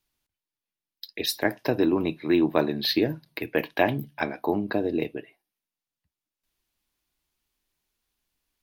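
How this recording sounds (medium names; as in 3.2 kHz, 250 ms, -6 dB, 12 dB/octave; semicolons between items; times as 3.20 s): noise floor -91 dBFS; spectral tilt -4.0 dB/octave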